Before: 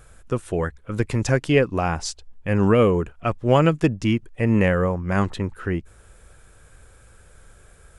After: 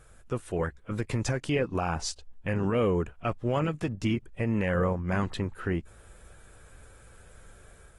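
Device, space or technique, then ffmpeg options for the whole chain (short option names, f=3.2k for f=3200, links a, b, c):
low-bitrate web radio: -af "dynaudnorm=f=520:g=3:m=4dB,alimiter=limit=-12dB:level=0:latency=1:release=126,volume=-6.5dB" -ar 44100 -c:a aac -b:a 32k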